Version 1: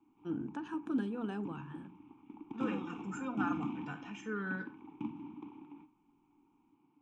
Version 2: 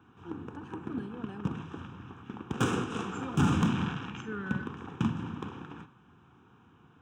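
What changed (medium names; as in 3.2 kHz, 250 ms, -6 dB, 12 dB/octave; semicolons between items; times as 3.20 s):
first voice -4.5 dB; background: remove vowel filter u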